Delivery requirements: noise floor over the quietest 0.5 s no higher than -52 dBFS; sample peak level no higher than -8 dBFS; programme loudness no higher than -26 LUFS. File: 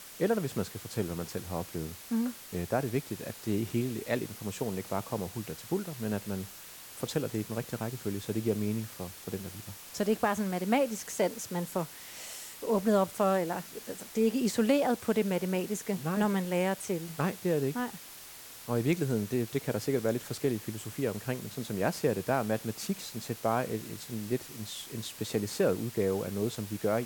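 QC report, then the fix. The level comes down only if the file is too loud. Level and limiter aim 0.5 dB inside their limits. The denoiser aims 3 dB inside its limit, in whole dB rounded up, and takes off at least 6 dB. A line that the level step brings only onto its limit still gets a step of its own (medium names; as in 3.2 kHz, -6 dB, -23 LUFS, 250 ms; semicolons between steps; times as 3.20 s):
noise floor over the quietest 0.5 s -48 dBFS: fail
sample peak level -14.5 dBFS: pass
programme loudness -32.5 LUFS: pass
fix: noise reduction 7 dB, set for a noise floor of -48 dBFS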